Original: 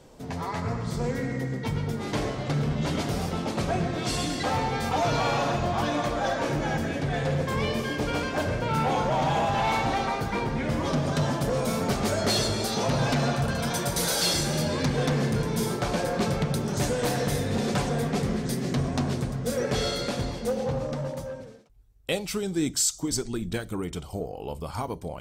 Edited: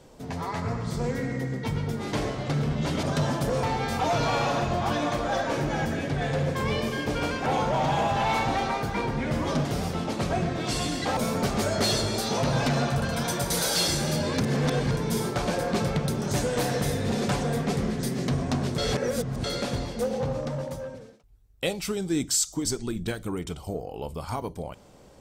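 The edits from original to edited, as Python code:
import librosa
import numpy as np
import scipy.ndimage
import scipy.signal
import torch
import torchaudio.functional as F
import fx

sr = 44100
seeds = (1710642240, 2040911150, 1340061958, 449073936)

y = fx.edit(x, sr, fx.swap(start_s=3.03, length_s=1.52, other_s=11.03, other_length_s=0.6),
    fx.cut(start_s=8.38, length_s=0.46),
    fx.reverse_span(start_s=14.86, length_s=0.51),
    fx.reverse_span(start_s=19.24, length_s=0.66), tone=tone)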